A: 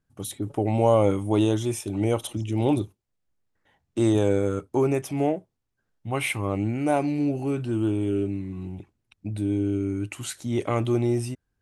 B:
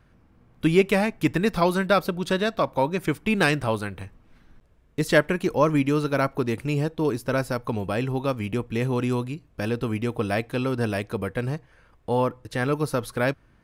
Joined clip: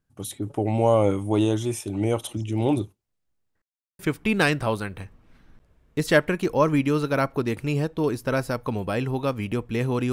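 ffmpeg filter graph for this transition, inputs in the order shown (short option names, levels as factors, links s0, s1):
-filter_complex "[0:a]apad=whole_dur=10.12,atrim=end=10.12,asplit=2[s0][s1];[s0]atrim=end=3.62,asetpts=PTS-STARTPTS,afade=t=out:st=3.616:d=0.004:c=hsin[s2];[s1]atrim=start=3.62:end=3.99,asetpts=PTS-STARTPTS,volume=0[s3];[1:a]atrim=start=3:end=9.13,asetpts=PTS-STARTPTS,afade=t=in:d=0.004:c=hsin[s4];[s2][s3][s4]concat=n=3:v=0:a=1"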